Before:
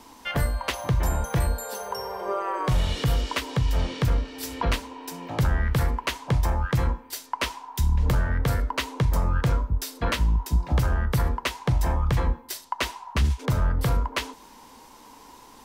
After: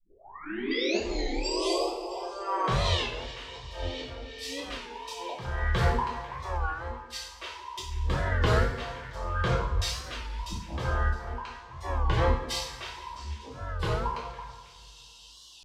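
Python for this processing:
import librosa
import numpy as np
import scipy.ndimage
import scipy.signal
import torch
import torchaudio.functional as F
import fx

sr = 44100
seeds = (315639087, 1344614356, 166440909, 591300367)

p1 = fx.tape_start_head(x, sr, length_s=2.26)
p2 = scipy.signal.sosfilt(scipy.signal.butter(2, 5000.0, 'lowpass', fs=sr, output='sos'), p1)
p3 = fx.low_shelf(p2, sr, hz=340.0, db=-6.5)
p4 = fx.level_steps(p3, sr, step_db=11)
p5 = p3 + F.gain(torch.from_numpy(p4), 1.0).numpy()
p6 = fx.noise_reduce_blind(p5, sr, reduce_db=29)
p7 = fx.rider(p6, sr, range_db=5, speed_s=2.0)
p8 = fx.auto_swell(p7, sr, attack_ms=795.0)
p9 = fx.echo_stepped(p8, sr, ms=165, hz=310.0, octaves=1.4, feedback_pct=70, wet_db=-7)
p10 = fx.rev_double_slope(p9, sr, seeds[0], early_s=0.54, late_s=2.7, knee_db=-19, drr_db=-6.5)
p11 = fx.record_warp(p10, sr, rpm=33.33, depth_cents=160.0)
y = F.gain(torch.from_numpy(p11), -3.5).numpy()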